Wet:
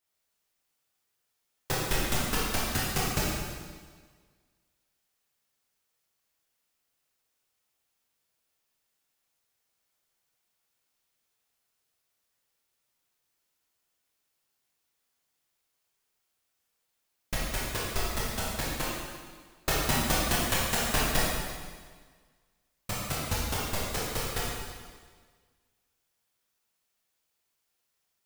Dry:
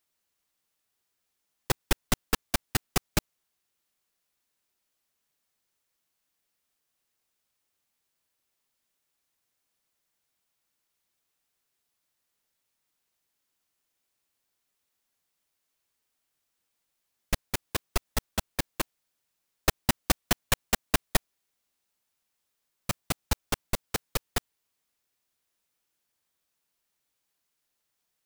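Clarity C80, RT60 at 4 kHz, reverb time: 0.5 dB, 1.5 s, 1.6 s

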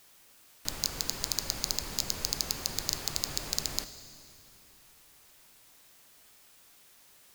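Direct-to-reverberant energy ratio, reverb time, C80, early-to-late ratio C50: 11.0 dB, 2.6 s, 13.0 dB, 12.0 dB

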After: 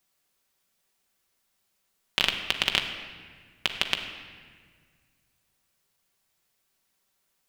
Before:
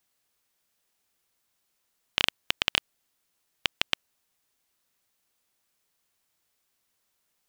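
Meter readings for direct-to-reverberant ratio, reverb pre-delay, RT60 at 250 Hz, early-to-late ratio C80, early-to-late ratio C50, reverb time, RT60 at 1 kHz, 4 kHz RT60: 3.0 dB, 5 ms, 2.2 s, 8.5 dB, 7.0 dB, 1.7 s, 1.6 s, 1.3 s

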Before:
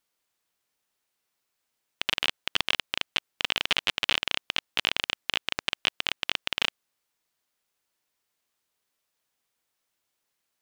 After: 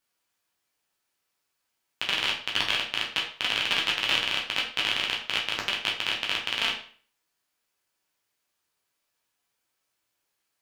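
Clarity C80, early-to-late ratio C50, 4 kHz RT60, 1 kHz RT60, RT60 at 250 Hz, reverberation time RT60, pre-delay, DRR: 11.0 dB, 7.0 dB, 0.40 s, 0.45 s, 0.45 s, 0.45 s, 9 ms, −2.5 dB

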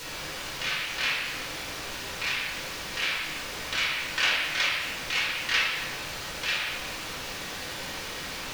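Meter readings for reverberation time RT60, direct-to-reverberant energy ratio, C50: 1.5 s, −6.5 dB, 0.5 dB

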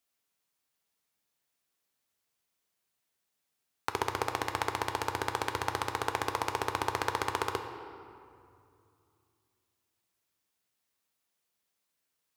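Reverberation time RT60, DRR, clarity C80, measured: 2.5 s, 5.5 dB, 8.5 dB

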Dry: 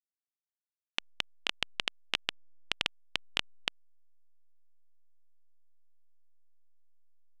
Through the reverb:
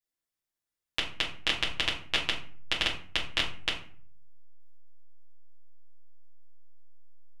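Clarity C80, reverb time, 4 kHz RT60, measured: 13.0 dB, 0.45 s, 0.30 s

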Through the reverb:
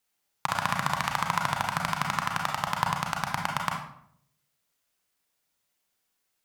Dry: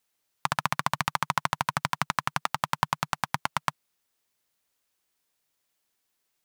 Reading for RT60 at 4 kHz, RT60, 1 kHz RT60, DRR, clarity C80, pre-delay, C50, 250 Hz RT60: 0.45 s, 0.70 s, 0.65 s, 1.0 dB, 8.5 dB, 31 ms, 5.0 dB, 0.80 s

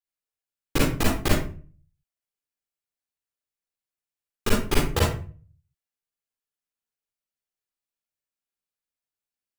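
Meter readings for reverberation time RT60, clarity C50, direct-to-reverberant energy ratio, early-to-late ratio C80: 0.40 s, 1.0 dB, −5.0 dB, 7.5 dB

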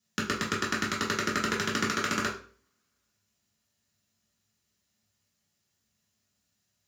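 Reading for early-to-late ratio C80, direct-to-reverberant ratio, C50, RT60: 12.5 dB, −6.0 dB, 7.5 dB, 0.45 s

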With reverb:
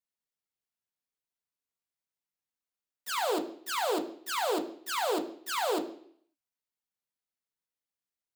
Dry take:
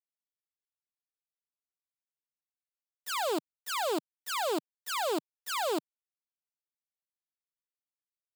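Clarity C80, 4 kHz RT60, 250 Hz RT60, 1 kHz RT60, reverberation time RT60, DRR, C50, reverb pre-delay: 14.5 dB, 0.65 s, 0.65 s, 0.60 s, 0.60 s, 4.0 dB, 12.5 dB, 3 ms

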